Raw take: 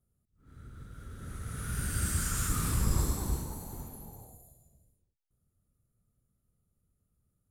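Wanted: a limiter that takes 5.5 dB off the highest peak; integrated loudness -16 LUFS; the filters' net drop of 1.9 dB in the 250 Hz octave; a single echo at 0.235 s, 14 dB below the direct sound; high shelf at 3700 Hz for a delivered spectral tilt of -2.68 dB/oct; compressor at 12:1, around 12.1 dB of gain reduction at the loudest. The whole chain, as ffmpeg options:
-af "equalizer=f=250:t=o:g=-3,highshelf=f=3.7k:g=8,acompressor=threshold=-34dB:ratio=12,alimiter=level_in=6dB:limit=-24dB:level=0:latency=1,volume=-6dB,aecho=1:1:235:0.2,volume=24.5dB"

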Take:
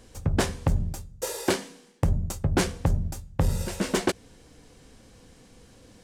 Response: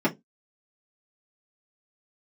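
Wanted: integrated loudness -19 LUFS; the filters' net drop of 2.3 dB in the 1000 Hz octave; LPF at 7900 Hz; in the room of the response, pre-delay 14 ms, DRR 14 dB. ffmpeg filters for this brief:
-filter_complex "[0:a]lowpass=7.9k,equalizer=f=1k:t=o:g=-3,asplit=2[a][b];[1:a]atrim=start_sample=2205,adelay=14[c];[b][c]afir=irnorm=-1:irlink=0,volume=-27dB[d];[a][d]amix=inputs=2:normalize=0,volume=9dB"

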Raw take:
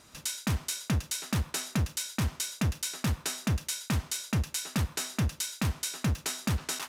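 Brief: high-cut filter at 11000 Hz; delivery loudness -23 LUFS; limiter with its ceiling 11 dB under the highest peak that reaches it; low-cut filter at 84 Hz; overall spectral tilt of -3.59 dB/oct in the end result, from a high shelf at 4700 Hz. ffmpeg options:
-af "highpass=84,lowpass=11k,highshelf=f=4.7k:g=-7.5,volume=17dB,alimiter=limit=-13dB:level=0:latency=1"

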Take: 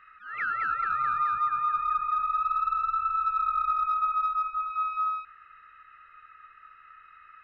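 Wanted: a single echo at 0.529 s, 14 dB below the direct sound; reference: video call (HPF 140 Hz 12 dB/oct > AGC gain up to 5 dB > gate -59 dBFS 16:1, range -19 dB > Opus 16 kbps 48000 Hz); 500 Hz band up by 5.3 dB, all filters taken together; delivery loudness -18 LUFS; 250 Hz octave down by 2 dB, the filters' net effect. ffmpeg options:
-af "highpass=140,equalizer=f=250:t=o:g=-4.5,equalizer=f=500:t=o:g=7.5,aecho=1:1:529:0.2,dynaudnorm=m=5dB,agate=range=-19dB:threshold=-59dB:ratio=16,volume=8dB" -ar 48000 -c:a libopus -b:a 16k

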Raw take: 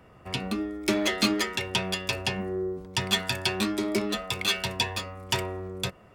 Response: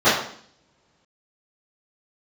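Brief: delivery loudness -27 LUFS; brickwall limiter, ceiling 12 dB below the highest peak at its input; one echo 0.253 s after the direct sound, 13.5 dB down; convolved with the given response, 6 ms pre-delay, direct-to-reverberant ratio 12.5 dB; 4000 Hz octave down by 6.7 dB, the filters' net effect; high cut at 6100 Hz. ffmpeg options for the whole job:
-filter_complex "[0:a]lowpass=6.1k,equalizer=f=4k:t=o:g=-8,alimiter=level_in=0.5dB:limit=-24dB:level=0:latency=1,volume=-0.5dB,aecho=1:1:253:0.211,asplit=2[a][b];[1:a]atrim=start_sample=2205,adelay=6[c];[b][c]afir=irnorm=-1:irlink=0,volume=-36.5dB[d];[a][d]amix=inputs=2:normalize=0,volume=6dB"

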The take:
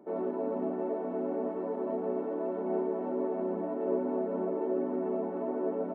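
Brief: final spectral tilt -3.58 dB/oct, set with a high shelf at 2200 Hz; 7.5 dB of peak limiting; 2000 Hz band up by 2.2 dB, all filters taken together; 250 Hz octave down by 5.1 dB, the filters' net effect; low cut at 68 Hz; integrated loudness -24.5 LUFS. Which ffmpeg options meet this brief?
-af "highpass=68,equalizer=f=250:t=o:g=-7,equalizer=f=2k:t=o:g=6.5,highshelf=f=2.2k:g=-6.5,volume=13.5dB,alimiter=limit=-16dB:level=0:latency=1"

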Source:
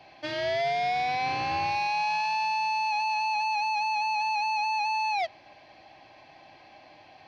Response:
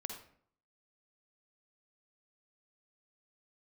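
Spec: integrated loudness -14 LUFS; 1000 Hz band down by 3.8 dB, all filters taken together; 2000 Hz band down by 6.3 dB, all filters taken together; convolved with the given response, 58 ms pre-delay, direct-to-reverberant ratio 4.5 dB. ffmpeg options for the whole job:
-filter_complex "[0:a]equalizer=f=1k:t=o:g=-3.5,equalizer=f=2k:t=o:g=-8.5,asplit=2[a][b];[1:a]atrim=start_sample=2205,adelay=58[c];[b][c]afir=irnorm=-1:irlink=0,volume=-3dB[d];[a][d]amix=inputs=2:normalize=0,volume=16.5dB"

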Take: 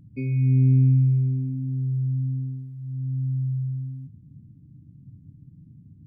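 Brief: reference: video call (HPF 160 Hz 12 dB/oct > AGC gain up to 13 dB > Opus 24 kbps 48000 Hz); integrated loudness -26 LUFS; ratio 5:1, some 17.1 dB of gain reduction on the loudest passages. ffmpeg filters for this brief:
-af "acompressor=threshold=-35dB:ratio=5,highpass=160,dynaudnorm=m=13dB,volume=15.5dB" -ar 48000 -c:a libopus -b:a 24k

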